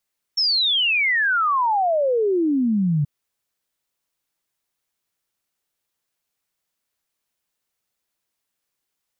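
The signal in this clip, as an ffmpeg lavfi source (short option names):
-f lavfi -i "aevalsrc='0.15*clip(min(t,2.68-t)/0.01,0,1)*sin(2*PI*5500*2.68/log(140/5500)*(exp(log(140/5500)*t/2.68)-1))':d=2.68:s=44100"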